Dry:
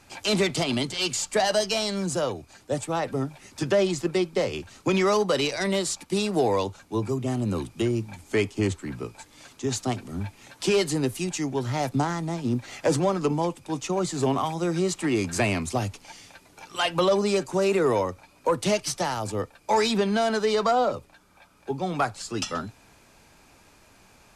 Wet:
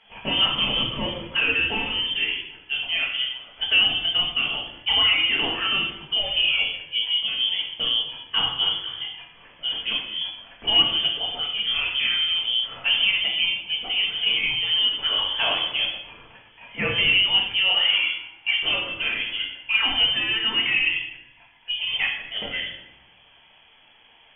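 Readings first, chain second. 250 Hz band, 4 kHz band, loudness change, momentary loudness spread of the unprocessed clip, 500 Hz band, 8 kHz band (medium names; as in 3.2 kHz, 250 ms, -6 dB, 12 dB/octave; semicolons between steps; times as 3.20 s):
-13.0 dB, +15.0 dB, +5.0 dB, 10 LU, -14.5 dB, under -40 dB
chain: frequency inversion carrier 3.3 kHz; simulated room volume 320 m³, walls mixed, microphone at 1.6 m; trim -3 dB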